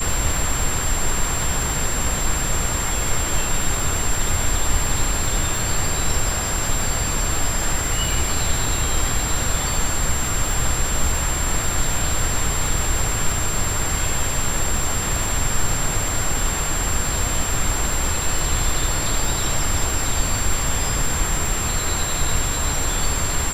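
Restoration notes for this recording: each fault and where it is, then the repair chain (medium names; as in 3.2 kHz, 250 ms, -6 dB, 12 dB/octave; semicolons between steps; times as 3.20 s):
crackle 27 per s -22 dBFS
whine 7.4 kHz -25 dBFS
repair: de-click; band-stop 7.4 kHz, Q 30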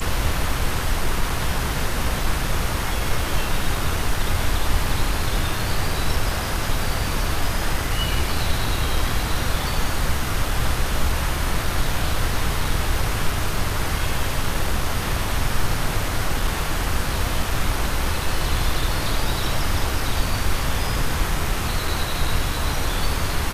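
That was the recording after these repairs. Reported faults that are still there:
nothing left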